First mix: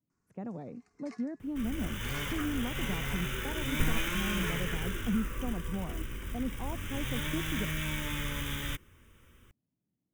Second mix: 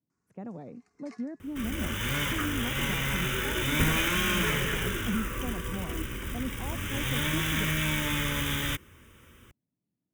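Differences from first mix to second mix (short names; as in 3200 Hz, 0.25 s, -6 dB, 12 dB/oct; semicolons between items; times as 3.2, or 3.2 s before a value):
second sound +7.0 dB; master: add HPF 78 Hz 6 dB/oct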